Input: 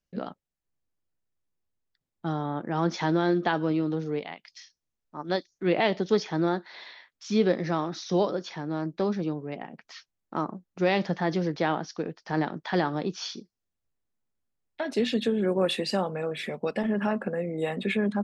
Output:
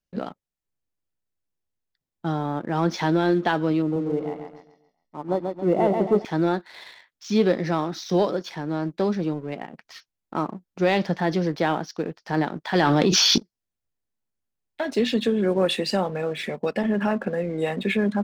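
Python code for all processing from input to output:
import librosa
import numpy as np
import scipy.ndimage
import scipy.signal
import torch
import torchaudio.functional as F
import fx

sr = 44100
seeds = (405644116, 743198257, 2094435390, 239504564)

y = fx.chain(x, sr, fx.savgol(points=65),
    fx.echo_feedback(ms=137, feedback_pct=44, wet_db=-5.0), at=(3.82, 6.25))
y = fx.chain(y, sr, fx.peak_eq(hz=3000.0, db=4.5, octaves=2.1),
    fx.env_flatten(amount_pct=100), at=(12.75, 13.38))
y = fx.notch(y, sr, hz=1200.0, q=25.0)
y = fx.leveller(y, sr, passes=1)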